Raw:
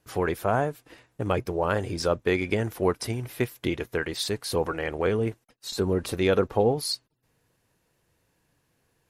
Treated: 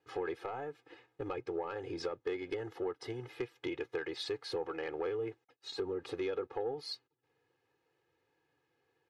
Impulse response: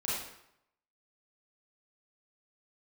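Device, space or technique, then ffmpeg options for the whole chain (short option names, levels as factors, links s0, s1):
AM radio: -filter_complex "[0:a]highpass=180,lowpass=3400,acompressor=threshold=0.0398:ratio=8,asoftclip=type=tanh:threshold=0.0794,asettb=1/sr,asplit=3[s0][s1][s2];[s0]atrim=end=2.194[s3];[s1]atrim=start=2.19:end=3.29,asetpts=PTS-STARTPTS,afade=t=in:d=0.004:c=qsin,afade=t=out:st=1.096:d=0.004:c=qsin,bandreject=f=2400:w=8.1[s4];[s2]atrim=start=3.286[s5];[s3][s4]acrossfade=d=0.004:c1=hsin:c2=qsin[s6];[s6][s5]acrossfade=d=0.004:c1=qsin:c2=hsin,aecho=1:1:2.4:0.95,volume=0.422"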